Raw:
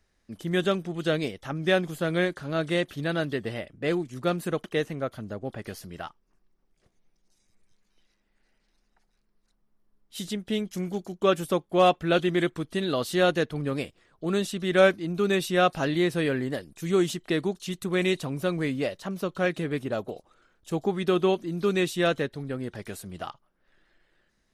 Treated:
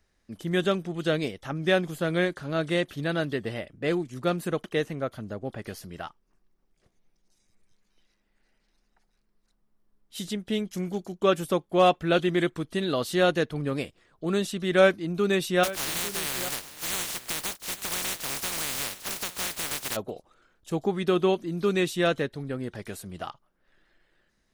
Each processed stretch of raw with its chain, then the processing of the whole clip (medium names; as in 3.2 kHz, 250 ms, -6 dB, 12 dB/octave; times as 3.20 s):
15.63–19.95 s: spectral contrast reduction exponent 0.12 + compression, threshold -26 dBFS + delay 849 ms -16 dB
whole clip: none